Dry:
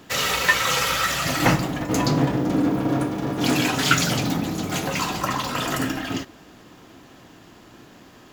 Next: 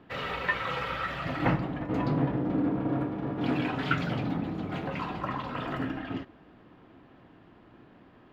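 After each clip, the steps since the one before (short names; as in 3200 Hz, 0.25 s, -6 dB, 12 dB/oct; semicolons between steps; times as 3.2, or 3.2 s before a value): air absorption 460 m; gain -6 dB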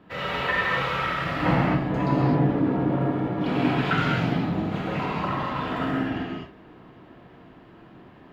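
non-linear reverb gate 0.28 s flat, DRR -5.5 dB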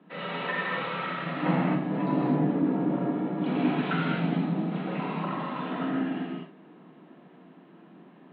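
Chebyshev band-pass 160–4000 Hz, order 5; low shelf 340 Hz +7.5 dB; gain -6 dB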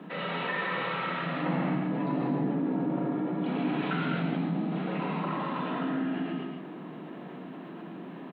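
on a send: echo 0.14 s -8 dB; on the sum: fast leveller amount 50%; gain -5.5 dB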